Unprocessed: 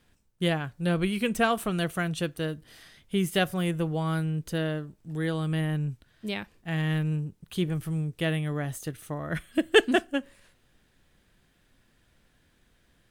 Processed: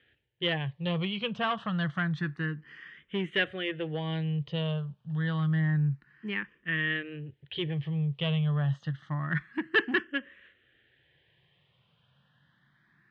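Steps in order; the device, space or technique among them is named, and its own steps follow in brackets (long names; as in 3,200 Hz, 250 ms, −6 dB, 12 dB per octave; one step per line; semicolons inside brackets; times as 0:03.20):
barber-pole phaser into a guitar amplifier (frequency shifter mixed with the dry sound +0.28 Hz; soft clipping −23 dBFS, distortion −12 dB; loudspeaker in its box 110–3,600 Hz, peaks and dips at 140 Hz +9 dB, 260 Hz −6 dB, 670 Hz −4 dB, 1,100 Hz +3 dB, 1,800 Hz +10 dB, 3,100 Hz +8 dB)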